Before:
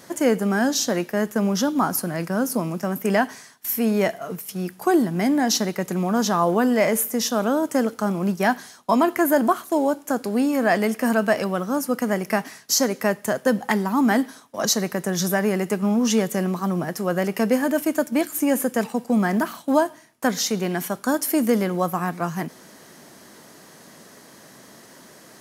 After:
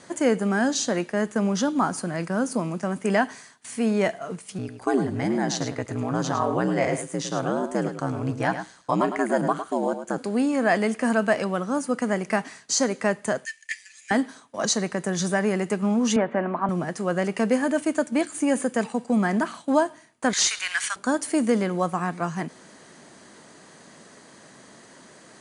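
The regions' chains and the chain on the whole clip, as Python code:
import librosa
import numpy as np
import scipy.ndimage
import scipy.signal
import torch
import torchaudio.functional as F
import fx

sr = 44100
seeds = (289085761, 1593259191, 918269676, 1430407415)

y = fx.chain(x, sr, fx.ring_mod(carrier_hz=64.0),
    fx.high_shelf(hz=7000.0, db=-4.5),
    fx.echo_single(ms=106, db=-9.5), at=(4.58, 10.18))
y = fx.chain(y, sr, fx.cheby_ripple_highpass(hz=1700.0, ripple_db=9),
    fx.leveller(passes=1), at=(13.45, 14.11))
y = fx.chain(y, sr, fx.law_mismatch(coded='mu'),
    fx.cabinet(low_hz=150.0, low_slope=12, high_hz=2400.0, hz=(180.0, 260.0, 430.0, 650.0, 940.0, 1500.0), db=(-6, 7, -4, 9, 7, 4)), at=(16.16, 16.69))
y = fx.chain(y, sr, fx.highpass(hz=1400.0, slope=24),
    fx.leveller(passes=3), at=(20.33, 20.96))
y = scipy.signal.sosfilt(scipy.signal.cheby1(10, 1.0, 10000.0, 'lowpass', fs=sr, output='sos'), y)
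y = fx.notch(y, sr, hz=5400.0, q=7.7)
y = y * 10.0 ** (-1.0 / 20.0)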